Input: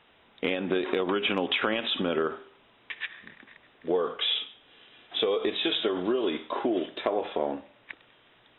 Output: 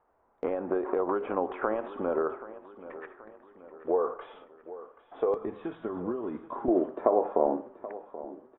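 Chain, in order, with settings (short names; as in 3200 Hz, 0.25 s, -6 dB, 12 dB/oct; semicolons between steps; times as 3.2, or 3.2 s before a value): LPF 1100 Hz 24 dB/oct; bell 170 Hz -14.5 dB 2.1 oct, from 5.34 s 500 Hz, from 6.68 s 66 Hz; gate -58 dBFS, range -7 dB; feedback echo 0.78 s, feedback 50%, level -16 dB; gain +5 dB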